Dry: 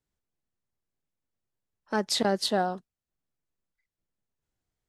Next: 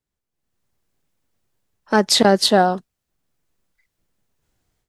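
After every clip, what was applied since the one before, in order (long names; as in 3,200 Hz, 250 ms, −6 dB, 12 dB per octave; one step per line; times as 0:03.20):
automatic gain control gain up to 14.5 dB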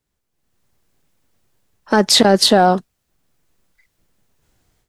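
in parallel at −6.5 dB: soft clipping −10 dBFS, distortion −12 dB
on the sum: boost into a limiter +6 dB
level −1.5 dB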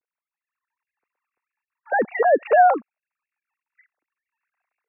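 three sine waves on the formant tracks
linear-phase brick-wall low-pass 2,800 Hz
level −4.5 dB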